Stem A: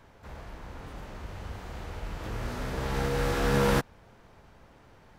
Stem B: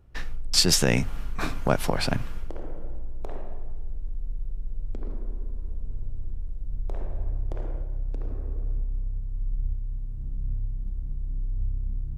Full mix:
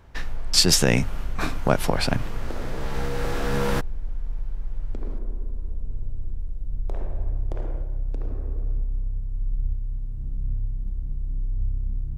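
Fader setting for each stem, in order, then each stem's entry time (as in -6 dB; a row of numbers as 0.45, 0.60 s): -1.0, +2.5 dB; 0.00, 0.00 s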